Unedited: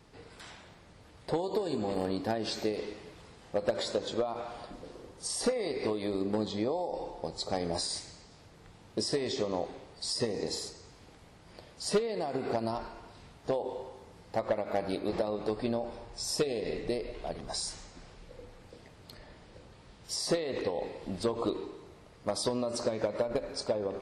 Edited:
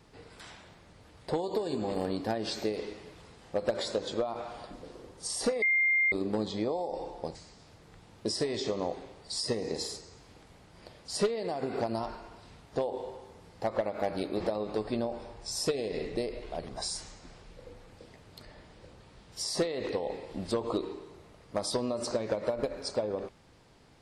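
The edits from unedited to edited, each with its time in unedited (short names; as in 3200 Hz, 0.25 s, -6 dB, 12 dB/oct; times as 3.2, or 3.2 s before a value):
5.62–6.12 bleep 2110 Hz -22.5 dBFS
7.35–8.07 cut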